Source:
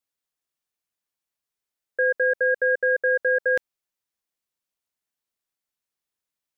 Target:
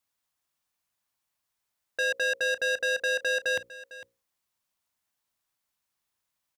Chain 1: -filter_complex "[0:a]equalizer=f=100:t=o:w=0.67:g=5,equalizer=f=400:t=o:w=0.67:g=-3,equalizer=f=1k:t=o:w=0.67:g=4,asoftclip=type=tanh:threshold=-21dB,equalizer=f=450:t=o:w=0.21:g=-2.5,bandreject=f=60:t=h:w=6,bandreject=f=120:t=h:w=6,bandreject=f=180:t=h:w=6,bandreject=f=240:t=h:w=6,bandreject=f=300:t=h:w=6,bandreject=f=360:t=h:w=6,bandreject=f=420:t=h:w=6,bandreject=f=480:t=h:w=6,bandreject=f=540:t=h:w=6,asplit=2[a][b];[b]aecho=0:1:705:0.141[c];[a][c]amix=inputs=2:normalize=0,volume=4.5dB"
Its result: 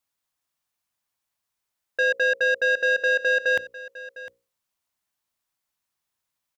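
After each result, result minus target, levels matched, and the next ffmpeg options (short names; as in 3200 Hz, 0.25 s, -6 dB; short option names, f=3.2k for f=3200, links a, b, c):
echo 0.252 s late; soft clip: distortion -6 dB
-filter_complex "[0:a]equalizer=f=100:t=o:w=0.67:g=5,equalizer=f=400:t=o:w=0.67:g=-3,equalizer=f=1k:t=o:w=0.67:g=4,asoftclip=type=tanh:threshold=-21dB,equalizer=f=450:t=o:w=0.21:g=-2.5,bandreject=f=60:t=h:w=6,bandreject=f=120:t=h:w=6,bandreject=f=180:t=h:w=6,bandreject=f=240:t=h:w=6,bandreject=f=300:t=h:w=6,bandreject=f=360:t=h:w=6,bandreject=f=420:t=h:w=6,bandreject=f=480:t=h:w=6,bandreject=f=540:t=h:w=6,asplit=2[a][b];[b]aecho=0:1:453:0.141[c];[a][c]amix=inputs=2:normalize=0,volume=4.5dB"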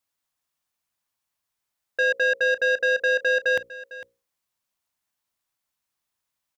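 soft clip: distortion -6 dB
-filter_complex "[0:a]equalizer=f=100:t=o:w=0.67:g=5,equalizer=f=400:t=o:w=0.67:g=-3,equalizer=f=1k:t=o:w=0.67:g=4,asoftclip=type=tanh:threshold=-29dB,equalizer=f=450:t=o:w=0.21:g=-2.5,bandreject=f=60:t=h:w=6,bandreject=f=120:t=h:w=6,bandreject=f=180:t=h:w=6,bandreject=f=240:t=h:w=6,bandreject=f=300:t=h:w=6,bandreject=f=360:t=h:w=6,bandreject=f=420:t=h:w=6,bandreject=f=480:t=h:w=6,bandreject=f=540:t=h:w=6,asplit=2[a][b];[b]aecho=0:1:453:0.141[c];[a][c]amix=inputs=2:normalize=0,volume=4.5dB"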